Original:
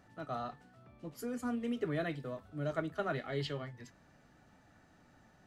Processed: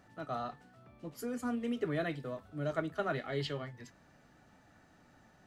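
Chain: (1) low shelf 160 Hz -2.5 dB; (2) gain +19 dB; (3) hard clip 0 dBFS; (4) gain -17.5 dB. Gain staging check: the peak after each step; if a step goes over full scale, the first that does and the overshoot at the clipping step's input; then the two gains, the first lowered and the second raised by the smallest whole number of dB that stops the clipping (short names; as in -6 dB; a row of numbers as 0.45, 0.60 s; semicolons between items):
-22.0, -3.0, -3.0, -20.5 dBFS; no overload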